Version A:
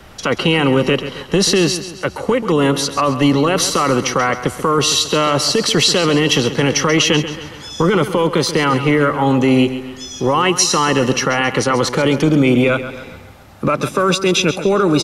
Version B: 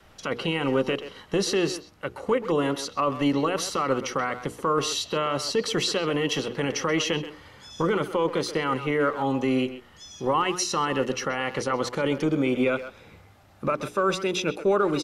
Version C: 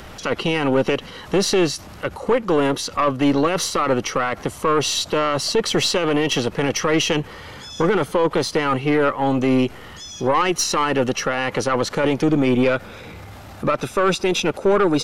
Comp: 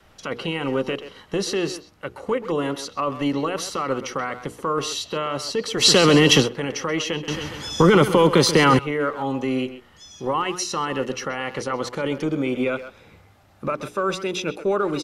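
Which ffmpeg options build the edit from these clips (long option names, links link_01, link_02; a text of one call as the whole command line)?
ffmpeg -i take0.wav -i take1.wav -filter_complex "[0:a]asplit=2[link_01][link_02];[1:a]asplit=3[link_03][link_04][link_05];[link_03]atrim=end=5.87[link_06];[link_01]atrim=start=5.77:end=6.5[link_07];[link_04]atrim=start=6.4:end=7.282[link_08];[link_02]atrim=start=7.278:end=8.792[link_09];[link_05]atrim=start=8.788[link_10];[link_06][link_07]acrossfade=duration=0.1:curve1=tri:curve2=tri[link_11];[link_11][link_08]acrossfade=duration=0.1:curve1=tri:curve2=tri[link_12];[link_12][link_09]acrossfade=duration=0.004:curve1=hsin:curve2=hsin[link_13];[link_13][link_10]acrossfade=duration=0.004:curve1=hsin:curve2=hsin" out.wav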